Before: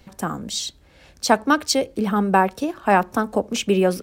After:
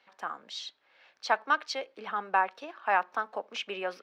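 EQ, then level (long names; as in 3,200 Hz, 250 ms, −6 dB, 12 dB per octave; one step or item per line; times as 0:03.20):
high-pass filter 980 Hz 12 dB per octave
high-frequency loss of the air 260 metres
−3.0 dB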